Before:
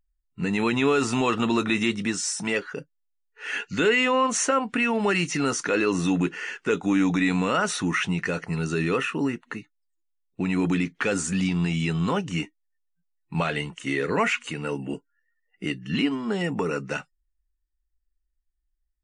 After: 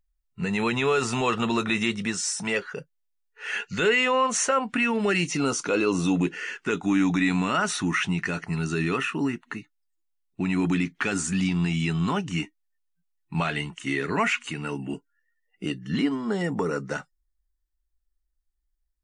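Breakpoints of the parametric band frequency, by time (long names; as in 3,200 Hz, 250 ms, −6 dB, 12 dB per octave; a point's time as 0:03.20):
parametric band −14 dB 0.25 octaves
0:04.56 290 Hz
0:05.38 1,800 Hz
0:06.14 1,800 Hz
0:06.67 500 Hz
0:14.94 500 Hz
0:15.81 2,600 Hz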